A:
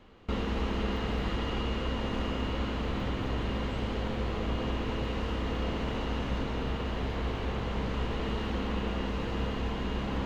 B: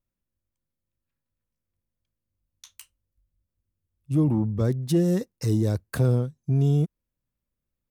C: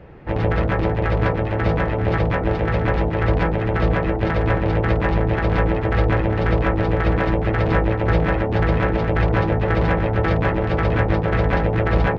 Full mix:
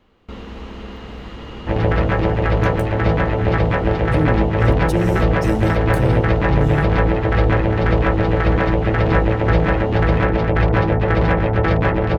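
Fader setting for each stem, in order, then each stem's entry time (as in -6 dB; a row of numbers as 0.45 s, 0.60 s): -2.0 dB, +0.5 dB, +2.5 dB; 0.00 s, 0.00 s, 1.40 s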